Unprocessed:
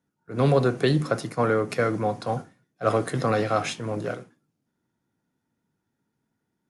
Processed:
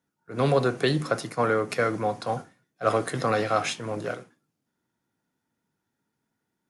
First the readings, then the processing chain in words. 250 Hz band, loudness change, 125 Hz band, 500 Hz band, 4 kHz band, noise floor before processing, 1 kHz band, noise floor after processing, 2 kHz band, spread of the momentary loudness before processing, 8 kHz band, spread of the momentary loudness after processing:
−3.0 dB, −1.5 dB, −4.5 dB, −1.5 dB, +1.5 dB, −80 dBFS, +0.5 dB, −81 dBFS, +1.0 dB, 10 LU, +1.5 dB, 10 LU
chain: low-shelf EQ 420 Hz −6.5 dB
level +1.5 dB

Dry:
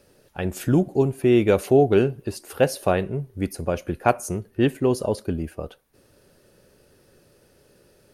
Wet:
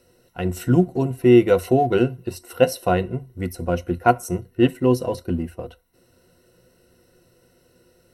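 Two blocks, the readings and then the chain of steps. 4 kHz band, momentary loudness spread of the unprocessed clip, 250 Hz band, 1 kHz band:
+2.0 dB, 14 LU, +2.5 dB, +4.0 dB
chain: EQ curve with evenly spaced ripples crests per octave 2, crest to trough 14 dB
in parallel at −11.5 dB: dead-zone distortion −35.5 dBFS
on the sum: level −3 dB

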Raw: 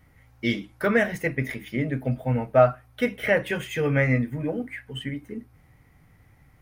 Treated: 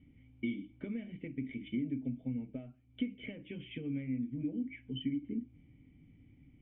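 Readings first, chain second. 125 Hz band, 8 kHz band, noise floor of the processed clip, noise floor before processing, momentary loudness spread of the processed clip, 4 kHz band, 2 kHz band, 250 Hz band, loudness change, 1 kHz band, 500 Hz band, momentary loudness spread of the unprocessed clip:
−16.5 dB, can't be measured, −63 dBFS, −58 dBFS, 9 LU, −12.0 dB, −24.0 dB, −7.5 dB, −14.5 dB, below −35 dB, −26.5 dB, 13 LU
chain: one-sided soft clipper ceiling −6.5 dBFS
downward compressor 10 to 1, threshold −34 dBFS, peak gain reduction 20.5 dB
formant resonators in series i
level +7 dB

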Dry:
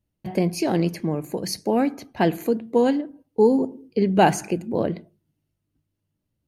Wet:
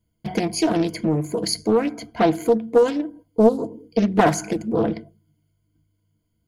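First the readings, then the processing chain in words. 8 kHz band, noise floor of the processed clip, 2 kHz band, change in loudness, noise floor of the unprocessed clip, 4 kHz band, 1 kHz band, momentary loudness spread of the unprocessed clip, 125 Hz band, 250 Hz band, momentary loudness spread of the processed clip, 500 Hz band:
+3.5 dB, −72 dBFS, +1.0 dB, +1.5 dB, −79 dBFS, +4.0 dB, 0.0 dB, 9 LU, 0.0 dB, +1.0 dB, 10 LU, +2.0 dB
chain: EQ curve with evenly spaced ripples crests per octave 1.8, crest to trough 16 dB
in parallel at +1 dB: downward compressor, threshold −24 dBFS, peak gain reduction 16.5 dB
on the sum: highs frequency-modulated by the lows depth 0.45 ms
level −4 dB

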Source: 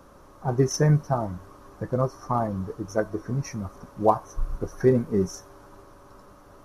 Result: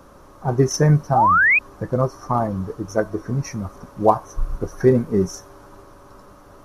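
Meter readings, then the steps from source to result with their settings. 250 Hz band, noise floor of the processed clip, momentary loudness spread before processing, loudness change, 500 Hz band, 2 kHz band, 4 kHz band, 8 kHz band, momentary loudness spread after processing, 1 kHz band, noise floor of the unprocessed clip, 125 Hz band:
+4.5 dB, −47 dBFS, 14 LU, +6.5 dB, +4.5 dB, +20.5 dB, +4.5 dB, +4.5 dB, 15 LU, +9.0 dB, −51 dBFS, +4.5 dB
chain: sound drawn into the spectrogram rise, 0:01.15–0:01.59, 730–2,600 Hz −19 dBFS
level +4.5 dB

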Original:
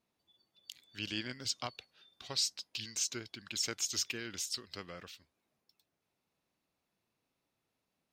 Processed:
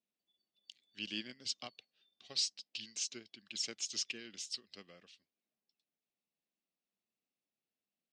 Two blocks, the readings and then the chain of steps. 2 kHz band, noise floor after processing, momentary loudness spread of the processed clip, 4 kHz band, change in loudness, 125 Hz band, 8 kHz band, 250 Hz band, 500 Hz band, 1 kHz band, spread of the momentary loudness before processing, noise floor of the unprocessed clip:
−5.0 dB, below −85 dBFS, 20 LU, −2.5 dB, −3.0 dB, −13.0 dB, −5.0 dB, −5.0 dB, −7.5 dB, −10.5 dB, 19 LU, −85 dBFS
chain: high-shelf EQ 5,500 Hz +4.5 dB
notch filter 950 Hz, Q 11
soft clipping −20.5 dBFS, distortion −23 dB
loudspeaker in its box 180–7,500 Hz, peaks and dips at 210 Hz +6 dB, 950 Hz −4 dB, 1,400 Hz −7 dB, 2,900 Hz +4 dB, 6,700 Hz −3 dB
expander for the loud parts 1.5 to 1, over −53 dBFS
level −1.5 dB

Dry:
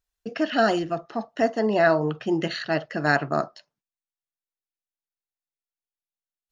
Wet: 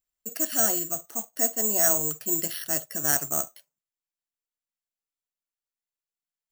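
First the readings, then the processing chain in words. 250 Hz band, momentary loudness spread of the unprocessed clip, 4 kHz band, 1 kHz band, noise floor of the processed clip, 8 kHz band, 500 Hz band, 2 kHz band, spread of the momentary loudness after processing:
−10.5 dB, 10 LU, −4.0 dB, −10.5 dB, below −85 dBFS, can't be measured, −10.5 dB, −10.5 dB, 9 LU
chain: noise that follows the level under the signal 25 dB
bad sample-rate conversion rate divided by 6×, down none, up zero stuff
level −10.5 dB

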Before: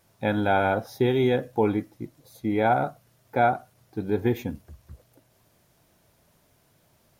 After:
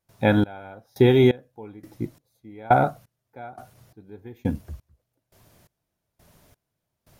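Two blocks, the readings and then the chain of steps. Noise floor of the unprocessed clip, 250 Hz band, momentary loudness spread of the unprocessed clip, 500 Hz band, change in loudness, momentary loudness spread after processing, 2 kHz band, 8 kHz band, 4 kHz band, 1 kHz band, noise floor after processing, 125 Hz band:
−65 dBFS, +2.5 dB, 15 LU, +1.0 dB, +3.0 dB, 24 LU, −1.5 dB, can't be measured, +3.0 dB, −1.0 dB, −81 dBFS, +4.5 dB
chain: low-shelf EQ 100 Hz +5.5 dB
gate pattern ".xxxx....." 172 BPM −24 dB
level +5.5 dB

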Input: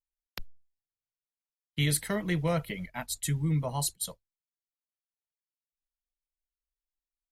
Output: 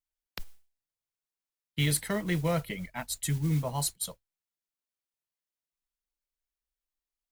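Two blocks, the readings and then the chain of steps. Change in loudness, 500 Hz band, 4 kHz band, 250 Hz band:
0.0 dB, 0.0 dB, 0.0 dB, 0.0 dB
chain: noise that follows the level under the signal 22 dB

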